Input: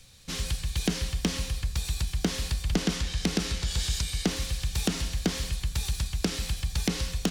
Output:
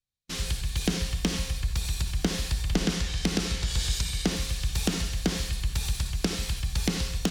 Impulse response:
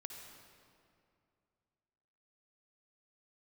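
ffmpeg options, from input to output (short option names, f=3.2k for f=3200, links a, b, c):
-filter_complex "[0:a]agate=range=-39dB:threshold=-35dB:ratio=16:detection=peak[a];[1:a]atrim=start_sample=2205,atrim=end_sample=4410[b];[a][b]afir=irnorm=-1:irlink=0,volume=6dB"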